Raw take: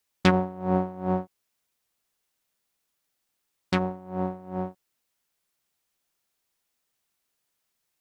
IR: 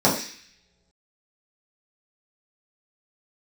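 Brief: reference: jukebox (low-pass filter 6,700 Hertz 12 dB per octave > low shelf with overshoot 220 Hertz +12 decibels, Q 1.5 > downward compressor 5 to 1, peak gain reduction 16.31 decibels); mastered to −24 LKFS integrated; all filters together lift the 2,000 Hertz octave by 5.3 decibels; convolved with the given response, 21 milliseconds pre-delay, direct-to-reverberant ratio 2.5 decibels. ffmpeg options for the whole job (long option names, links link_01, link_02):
-filter_complex "[0:a]equalizer=frequency=2000:width_type=o:gain=7,asplit=2[link_01][link_02];[1:a]atrim=start_sample=2205,adelay=21[link_03];[link_02][link_03]afir=irnorm=-1:irlink=0,volume=-22dB[link_04];[link_01][link_04]amix=inputs=2:normalize=0,lowpass=6700,lowshelf=frequency=220:width_type=q:width=1.5:gain=12,acompressor=threshold=-24dB:ratio=5,volume=4dB"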